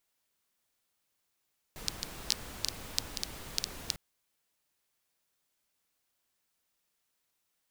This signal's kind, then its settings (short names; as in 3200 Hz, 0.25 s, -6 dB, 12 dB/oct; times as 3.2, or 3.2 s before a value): rain from filtered ticks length 2.20 s, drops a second 5.3, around 4700 Hz, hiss -4.5 dB